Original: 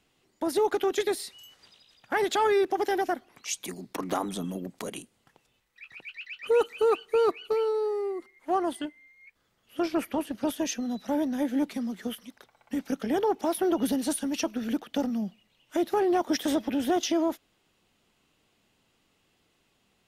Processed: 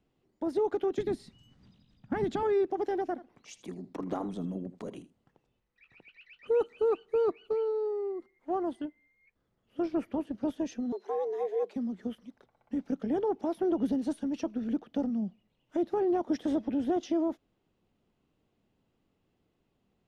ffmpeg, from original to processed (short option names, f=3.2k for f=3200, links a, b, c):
-filter_complex "[0:a]asettb=1/sr,asplit=3[a][b][c];[a]atrim=end=0.984[d];[b]atrim=start=0.98:end=2.43,asetpts=PTS-STARTPTS,afade=t=in:d=0.004:c=qsin,afade=t=out:st=1.446:d=0.004:c=qsin,lowshelf=f=300:t=q:w=1.5:g=12.5[e];[c]atrim=start=2.426[f];[d][e]acrossfade=d=0.004:c1=hsin:c2=qsin[g];[g][f]acrossfade=d=0.004:c1=qsin:c2=hsin,asettb=1/sr,asplit=3[h][i][j];[h]atrim=end=3.104[k];[i]atrim=start=3.1:end=6.27,asetpts=PTS-STARTPTS,afade=t=in:d=0.004:c=qsin,afade=t=out:st=3.166:d=0.004:c=qsin,aecho=1:1:79:0.158,atrim=end_sample=139797[l];[j]atrim=start=6.266[m];[k][l]acrossfade=d=0.004:c1=hsin:c2=qsin[n];[n][m]acrossfade=d=0.004:c1=qsin:c2=hsin,asettb=1/sr,asplit=3[o][p][q];[o]atrim=end=10.924[r];[p]atrim=start=10.92:end=11.76,asetpts=PTS-STARTPTS,afade=t=in:d=0.004:c=qsin,afade=t=out:st=0.836:d=0.004:c=qsin,afreqshift=190[s];[q]atrim=start=11.756[t];[r][s]acrossfade=d=0.004:c1=hsin:c2=qsin[u];[u][t]acrossfade=d=0.004:c1=qsin:c2=hsin,lowpass=7.1k,tiltshelf=f=970:g=8,volume=-8.5dB"